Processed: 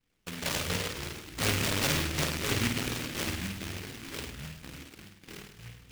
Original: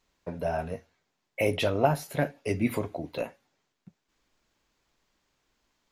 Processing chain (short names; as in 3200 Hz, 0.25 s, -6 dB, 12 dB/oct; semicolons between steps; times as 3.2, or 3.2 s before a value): 0.68–1.67 low shelf 290 Hz +11 dB; sample-and-hold 36×; in parallel at -5 dB: wavefolder -23 dBFS; on the sum: echoes that change speed 0.119 s, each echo -4 st, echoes 3, each echo -6 dB; on a send: flutter echo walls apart 8.8 m, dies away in 0.78 s; on the sum: noise-modulated delay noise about 2200 Hz, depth 0.4 ms; gain -8.5 dB